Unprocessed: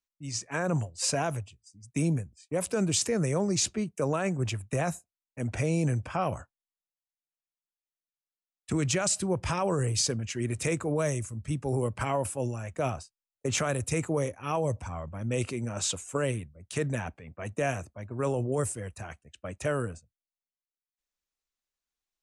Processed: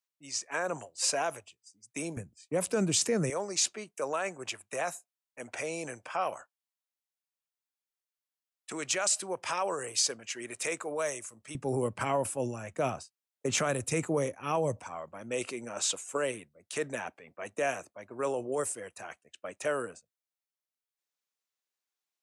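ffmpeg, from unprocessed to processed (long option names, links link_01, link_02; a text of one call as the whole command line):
ffmpeg -i in.wav -af "asetnsamples=nb_out_samples=441:pad=0,asendcmd='2.17 highpass f 160;3.3 highpass f 560;11.55 highpass f 170;14.8 highpass f 370',highpass=460" out.wav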